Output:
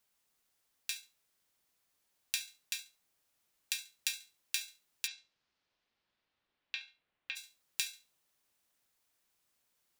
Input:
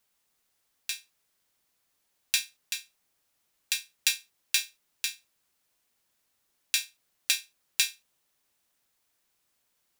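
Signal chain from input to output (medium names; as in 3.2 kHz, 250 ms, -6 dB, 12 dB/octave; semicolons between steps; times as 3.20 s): thinning echo 69 ms, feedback 18%, level -17 dB; compression 3:1, threshold -29 dBFS, peak gain reduction 7.5 dB; 5.06–7.35 s: low-pass 5.8 kHz -> 3 kHz 24 dB/octave; trim -3.5 dB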